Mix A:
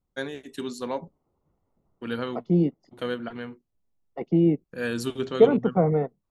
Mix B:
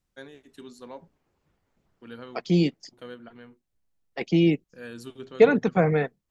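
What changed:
first voice -11.5 dB; second voice: remove polynomial smoothing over 65 samples

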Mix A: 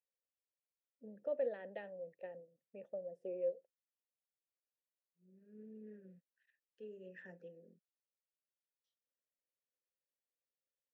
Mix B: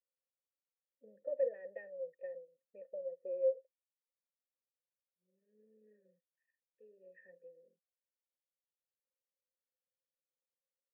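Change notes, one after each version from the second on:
first voice +5.5 dB; master: add vocal tract filter e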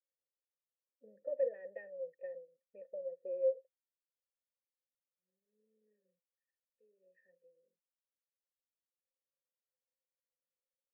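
second voice -11.0 dB

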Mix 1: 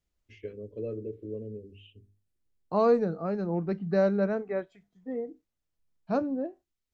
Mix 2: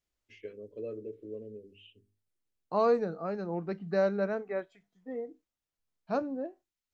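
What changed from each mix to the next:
first voice: add HPF 120 Hz; master: add low shelf 340 Hz -9 dB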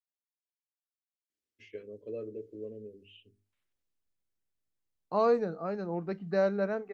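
first voice: entry +1.30 s; second voice: entry +2.40 s

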